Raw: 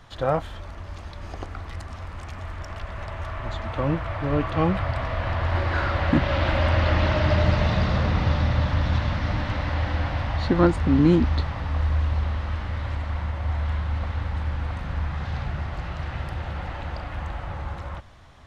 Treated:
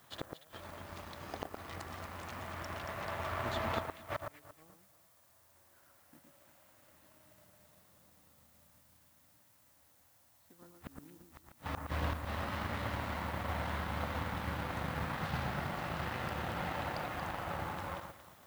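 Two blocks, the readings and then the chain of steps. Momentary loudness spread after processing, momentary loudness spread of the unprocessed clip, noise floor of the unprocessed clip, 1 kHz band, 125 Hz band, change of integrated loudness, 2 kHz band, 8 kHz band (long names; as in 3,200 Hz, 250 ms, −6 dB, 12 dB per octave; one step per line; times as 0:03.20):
12 LU, 16 LU, −38 dBFS, −10.0 dB, −19.5 dB, −14.5 dB, −11.0 dB, can't be measured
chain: high-pass filter 160 Hz 12 dB per octave
gate with flip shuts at −23 dBFS, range −32 dB
background noise blue −57 dBFS
delay that swaps between a low-pass and a high-pass 115 ms, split 1,700 Hz, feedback 58%, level −3 dB
power curve on the samples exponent 1.4
level +1.5 dB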